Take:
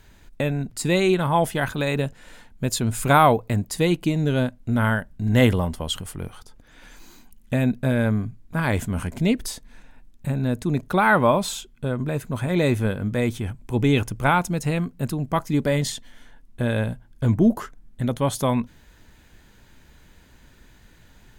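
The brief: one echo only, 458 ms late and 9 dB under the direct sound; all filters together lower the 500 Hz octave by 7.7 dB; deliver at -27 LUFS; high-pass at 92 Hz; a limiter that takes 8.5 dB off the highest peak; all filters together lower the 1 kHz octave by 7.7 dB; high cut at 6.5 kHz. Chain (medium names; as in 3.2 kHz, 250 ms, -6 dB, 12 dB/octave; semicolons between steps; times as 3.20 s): high-pass 92 Hz; low-pass 6.5 kHz; peaking EQ 500 Hz -8 dB; peaking EQ 1 kHz -7.5 dB; peak limiter -17 dBFS; delay 458 ms -9 dB; trim +1 dB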